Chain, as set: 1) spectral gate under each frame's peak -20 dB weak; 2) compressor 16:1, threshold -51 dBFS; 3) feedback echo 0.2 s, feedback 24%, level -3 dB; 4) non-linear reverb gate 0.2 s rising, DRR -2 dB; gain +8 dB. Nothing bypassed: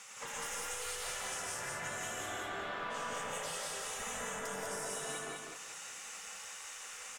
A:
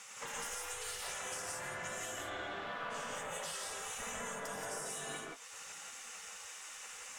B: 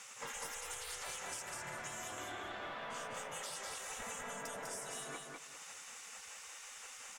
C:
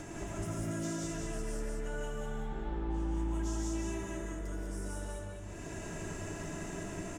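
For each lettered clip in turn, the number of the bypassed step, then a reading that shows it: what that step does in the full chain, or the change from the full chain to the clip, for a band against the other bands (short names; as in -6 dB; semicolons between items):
3, echo-to-direct 4.5 dB to 2.0 dB; 4, echo-to-direct 4.5 dB to -2.5 dB; 1, 125 Hz band +22.0 dB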